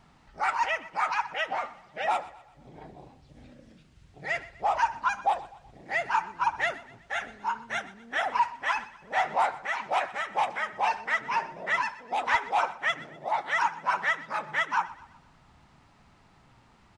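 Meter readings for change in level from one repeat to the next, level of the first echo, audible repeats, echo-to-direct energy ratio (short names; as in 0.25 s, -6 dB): -7.0 dB, -18.5 dB, 3, -17.5 dB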